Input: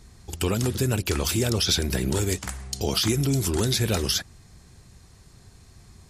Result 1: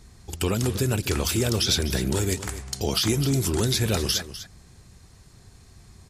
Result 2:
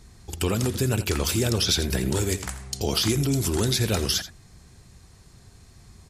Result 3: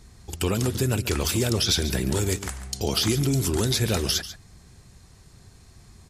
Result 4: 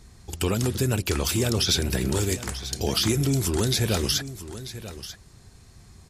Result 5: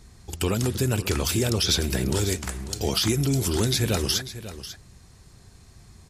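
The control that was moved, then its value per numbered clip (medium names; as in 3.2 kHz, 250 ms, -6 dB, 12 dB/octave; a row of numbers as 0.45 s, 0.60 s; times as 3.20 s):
delay, time: 251 ms, 84 ms, 141 ms, 939 ms, 544 ms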